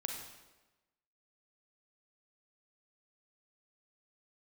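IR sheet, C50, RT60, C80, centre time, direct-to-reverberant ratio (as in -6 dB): 3.0 dB, 1.1 s, 5.5 dB, 44 ms, 1.5 dB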